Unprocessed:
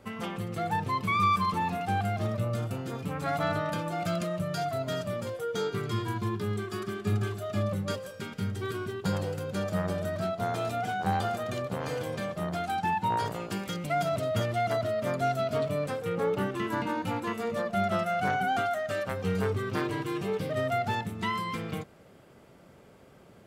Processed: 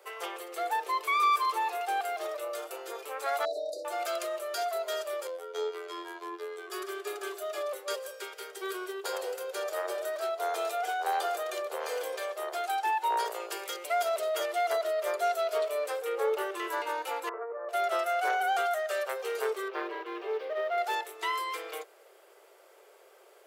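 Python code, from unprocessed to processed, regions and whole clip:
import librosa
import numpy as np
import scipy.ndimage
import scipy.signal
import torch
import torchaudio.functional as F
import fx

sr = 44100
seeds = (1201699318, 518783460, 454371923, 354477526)

y = fx.chain(x, sr, fx.brickwall_bandstop(low_hz=820.0, high_hz=3700.0),
    fx.air_absorb(metres=57.0), at=(3.45, 3.85))
y = fx.chain(y, sr, fx.lowpass(hz=2900.0, slope=6),
    fx.robotise(hz=86.0), at=(5.27, 6.7))
y = fx.chain(y, sr, fx.steep_lowpass(hz=1600.0, slope=36),
    fx.over_compress(threshold_db=-36.0, ratio=-1.0), at=(17.29, 17.69))
y = fx.chain(y, sr, fx.highpass(hz=180.0, slope=12),
    fx.quant_float(bits=2),
    fx.air_absorb(metres=320.0), at=(19.68, 20.78))
y = scipy.signal.sosfilt(scipy.signal.butter(12, 370.0, 'highpass', fs=sr, output='sos'), y)
y = fx.high_shelf(y, sr, hz=9100.0, db=10.0)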